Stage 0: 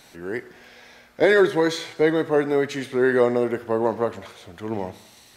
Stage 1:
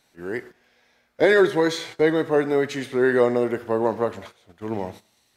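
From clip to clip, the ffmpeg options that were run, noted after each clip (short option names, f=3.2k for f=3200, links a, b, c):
-af "agate=range=-14dB:threshold=-39dB:ratio=16:detection=peak"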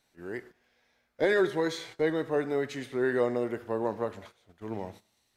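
-af "lowshelf=f=68:g=6.5,volume=-8.5dB"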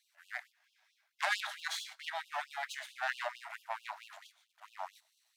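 -af "aeval=exprs='if(lt(val(0),0),0.251*val(0),val(0))':c=same,aeval=exprs='0.188*(cos(1*acos(clip(val(0)/0.188,-1,1)))-cos(1*PI/2))+0.0668*(cos(2*acos(clip(val(0)/0.188,-1,1)))-cos(2*PI/2))+0.0596*(cos(4*acos(clip(val(0)/0.188,-1,1)))-cos(4*PI/2))+0.0335*(cos(6*acos(clip(val(0)/0.188,-1,1)))-cos(6*PI/2))':c=same,afftfilt=real='re*gte(b*sr/1024,570*pow(2700/570,0.5+0.5*sin(2*PI*4.5*pts/sr)))':imag='im*gte(b*sr/1024,570*pow(2700/570,0.5+0.5*sin(2*PI*4.5*pts/sr)))':win_size=1024:overlap=0.75,volume=2.5dB"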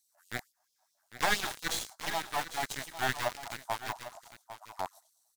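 -filter_complex "[0:a]acrossover=split=1000|5600[a][b][c];[b]acrusher=bits=4:dc=4:mix=0:aa=0.000001[d];[a][d][c]amix=inputs=3:normalize=0,aecho=1:1:801:0.237,volume=7.5dB"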